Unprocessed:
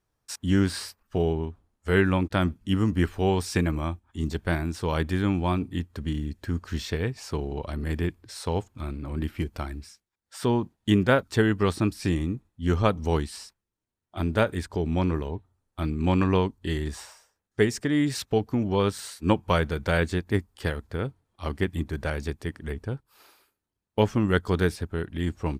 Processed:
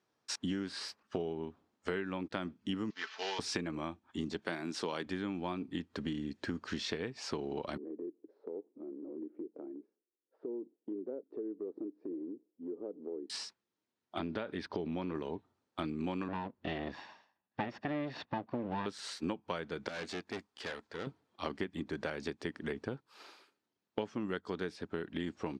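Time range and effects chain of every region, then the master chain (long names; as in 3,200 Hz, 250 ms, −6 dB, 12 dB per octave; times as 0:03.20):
0:02.90–0:03.39: variable-slope delta modulation 32 kbit/s + high-pass filter 1,200 Hz + comb filter 4.6 ms, depth 54%
0:04.42–0:05.06: high-pass filter 170 Hz + high-shelf EQ 3,900 Hz +7 dB
0:07.77–0:13.30: flat-topped band-pass 380 Hz, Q 1.9 + downward compressor 3 to 1, threshold −44 dBFS
0:14.19–0:15.15: downward compressor 4 to 1, threshold −25 dBFS + Savitzky-Golay smoothing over 15 samples
0:16.28–0:18.86: lower of the sound and its delayed copy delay 1.1 ms + high-frequency loss of the air 290 metres
0:19.88–0:21.07: low-shelf EQ 390 Hz −9.5 dB + tube saturation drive 36 dB, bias 0.65
whole clip: Chebyshev band-pass filter 240–5,000 Hz, order 2; downward compressor 10 to 1, threshold −36 dBFS; level +2.5 dB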